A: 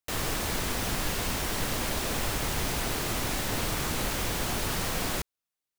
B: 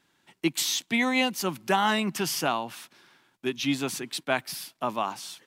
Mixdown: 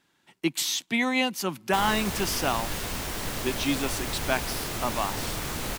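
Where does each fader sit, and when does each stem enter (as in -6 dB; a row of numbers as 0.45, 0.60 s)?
-2.0, -0.5 dB; 1.65, 0.00 s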